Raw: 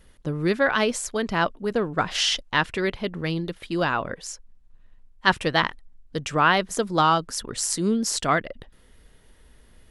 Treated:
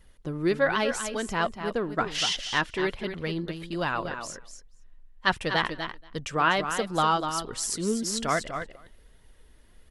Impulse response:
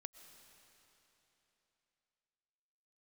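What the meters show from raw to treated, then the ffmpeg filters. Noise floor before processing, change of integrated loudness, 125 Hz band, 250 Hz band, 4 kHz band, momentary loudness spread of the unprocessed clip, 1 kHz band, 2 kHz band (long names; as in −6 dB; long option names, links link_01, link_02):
−54 dBFS, −4.0 dB, −5.0 dB, −4.5 dB, −3.5 dB, 11 LU, −3.5 dB, −3.5 dB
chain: -filter_complex "[0:a]asplit=2[link_01][link_02];[link_02]aecho=0:1:246:0.376[link_03];[link_01][link_03]amix=inputs=2:normalize=0,flanger=delay=0.9:depth=2.6:regen=63:speed=1.3:shape=triangular,asplit=2[link_04][link_05];[link_05]aecho=0:1:233:0.0891[link_06];[link_04][link_06]amix=inputs=2:normalize=0"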